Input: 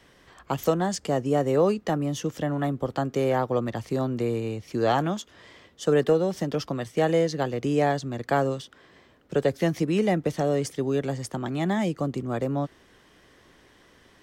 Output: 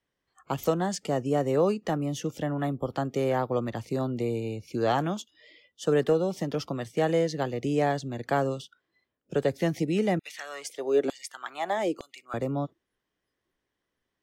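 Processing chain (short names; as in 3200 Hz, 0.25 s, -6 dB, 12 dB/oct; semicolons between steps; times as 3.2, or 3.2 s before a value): spectral noise reduction 24 dB; 10.19–12.34 LFO high-pass saw down 1.1 Hz 280–3400 Hz; gain -2.5 dB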